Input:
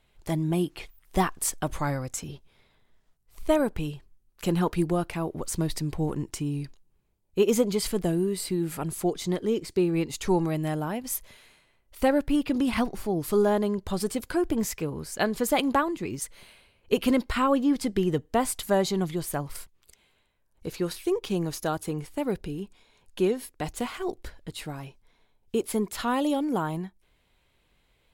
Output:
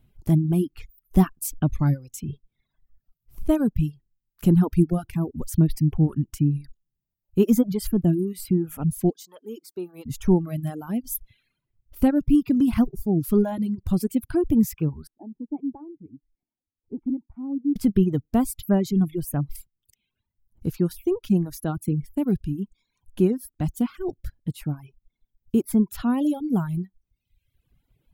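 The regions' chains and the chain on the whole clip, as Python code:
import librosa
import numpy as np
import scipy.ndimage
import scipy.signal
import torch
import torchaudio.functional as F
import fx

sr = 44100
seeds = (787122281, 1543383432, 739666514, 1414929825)

y = fx.chain(x, sr, fx.highpass(hz=660.0, slope=12),
    fx.peak_eq(hz=2000.0, db=-13.5, octaves=0.87), at=(9.1, 10.06))
y = fx.chain(y, sr, fx.formant_cascade(vowel='u'),
    fx.low_shelf(hz=390.0, db=-10.0), at=(15.07, 17.76))
y = fx.dereverb_blind(y, sr, rt60_s=1.2)
y = fx.graphic_eq_10(y, sr, hz=(125, 250, 500, 1000, 2000, 4000, 8000), db=(6, 4, -10, -9, -11, -11, -11))
y = fx.dereverb_blind(y, sr, rt60_s=0.82)
y = y * 10.0 ** (7.5 / 20.0)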